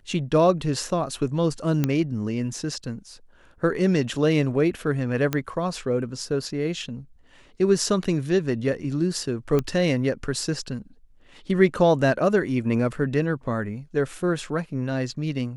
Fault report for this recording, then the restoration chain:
1.84 s: pop -9 dBFS
5.33 s: pop -10 dBFS
9.59 s: pop -12 dBFS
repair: de-click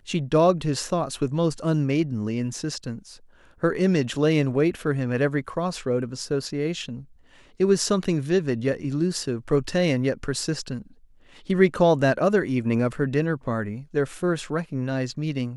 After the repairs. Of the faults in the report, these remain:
nothing left

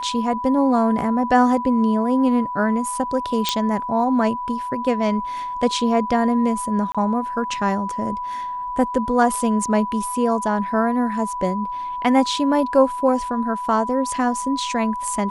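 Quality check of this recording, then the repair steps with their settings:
whine 990 Hz -25 dBFS
3.49 s: pop -4 dBFS
6.92–6.95 s: dropout 26 ms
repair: de-click; band-stop 990 Hz, Q 30; interpolate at 6.92 s, 26 ms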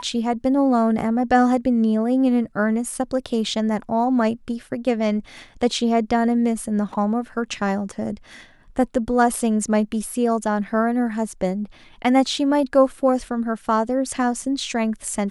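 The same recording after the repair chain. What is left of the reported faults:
nothing left

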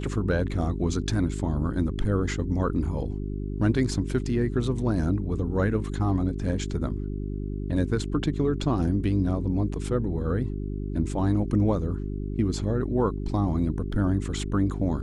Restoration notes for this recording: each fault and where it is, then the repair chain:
hum 50 Hz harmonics 8 -31 dBFS
13.92 s: dropout 4.3 ms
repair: de-hum 50 Hz, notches 8; interpolate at 13.92 s, 4.3 ms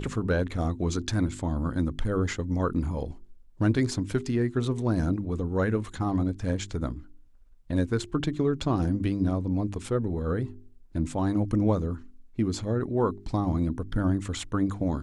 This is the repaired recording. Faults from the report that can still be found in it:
nothing left

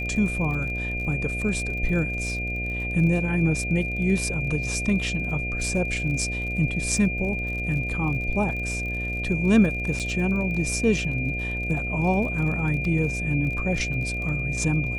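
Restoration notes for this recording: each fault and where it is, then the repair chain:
buzz 60 Hz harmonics 12 -31 dBFS
crackle 38 per s -33 dBFS
whine 2.4 kHz -29 dBFS
9.99–10.00 s: dropout 7.8 ms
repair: de-click; de-hum 60 Hz, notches 12; band-stop 2.4 kHz, Q 30; interpolate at 9.99 s, 7.8 ms

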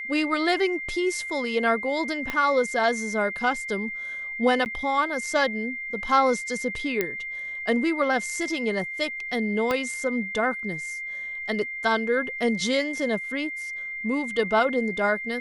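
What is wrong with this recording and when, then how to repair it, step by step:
whine 2.1 kHz -31 dBFS
2.30 s: pop -14 dBFS
4.65–4.66 s: dropout 9.6 ms
7.01 s: pop -10 dBFS
9.71 s: pop -12 dBFS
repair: de-click; band-stop 2.1 kHz, Q 30; interpolate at 4.65 s, 9.6 ms

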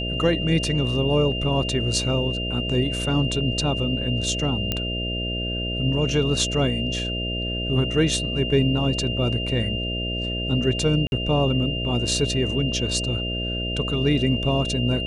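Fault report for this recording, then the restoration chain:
buzz 60 Hz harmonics 11 -29 dBFS
whine 2.8 kHz -28 dBFS
4.72 s: pop -9 dBFS
11.07–11.12 s: dropout 51 ms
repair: de-click; de-hum 60 Hz, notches 11; band-stop 2.8 kHz, Q 30; interpolate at 11.07 s, 51 ms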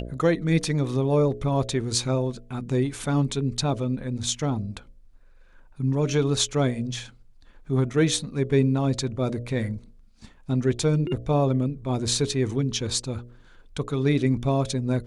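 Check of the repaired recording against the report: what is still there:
nothing left

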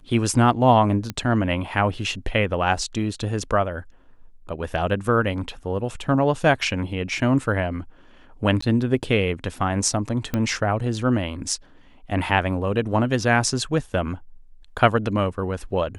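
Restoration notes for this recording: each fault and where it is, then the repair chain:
1.10 s: pop -13 dBFS
8.61–8.62 s: dropout 14 ms
10.34 s: pop -11 dBFS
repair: de-click; interpolate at 8.61 s, 14 ms

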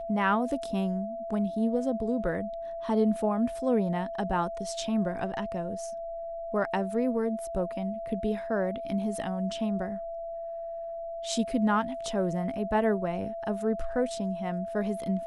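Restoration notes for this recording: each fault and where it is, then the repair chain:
whine 670 Hz -34 dBFS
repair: band-stop 670 Hz, Q 30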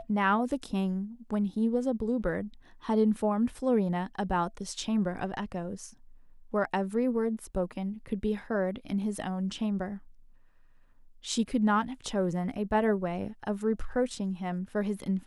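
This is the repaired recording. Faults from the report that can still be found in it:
nothing left

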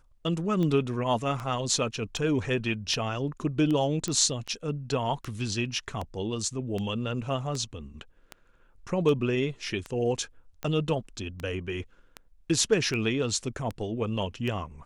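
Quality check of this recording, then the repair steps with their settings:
tick 78 rpm -20 dBFS
4.08 s: pop -17 dBFS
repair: de-click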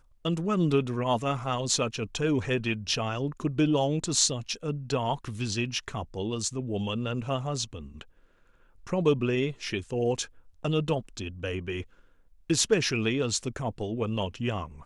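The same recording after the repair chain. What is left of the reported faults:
nothing left

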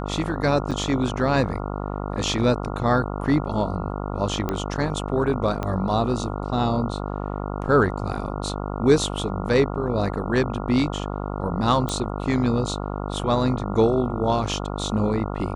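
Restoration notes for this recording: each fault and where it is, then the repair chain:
buzz 50 Hz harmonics 28 -29 dBFS
0.71–0.72 s: dropout 6.2 ms
4.49 s: pop -12 dBFS
5.63 s: pop -14 dBFS
11.89 s: pop -13 dBFS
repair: de-click; de-hum 50 Hz, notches 28; interpolate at 0.71 s, 6.2 ms

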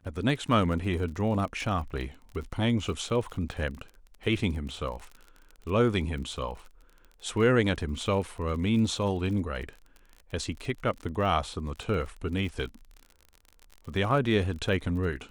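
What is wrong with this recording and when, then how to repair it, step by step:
crackle 43 per s -37 dBFS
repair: de-click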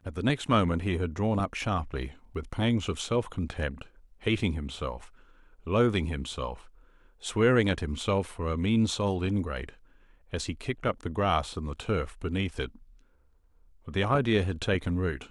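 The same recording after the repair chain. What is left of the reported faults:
nothing left

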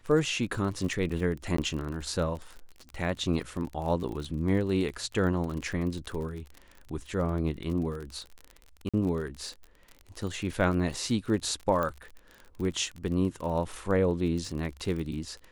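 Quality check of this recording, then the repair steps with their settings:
crackle 40 per s -35 dBFS
1.57–1.58 s: dropout 14 ms
8.89–8.94 s: dropout 46 ms
11.83 s: pop -18 dBFS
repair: de-click; interpolate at 1.57 s, 14 ms; interpolate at 8.89 s, 46 ms

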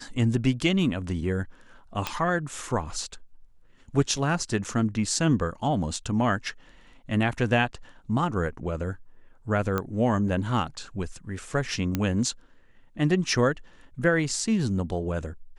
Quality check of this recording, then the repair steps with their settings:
2.07 s: pop -11 dBFS
4.64–4.65 s: dropout 6.9 ms
9.78 s: pop -14 dBFS
11.95 s: pop -12 dBFS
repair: de-click; interpolate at 4.64 s, 6.9 ms

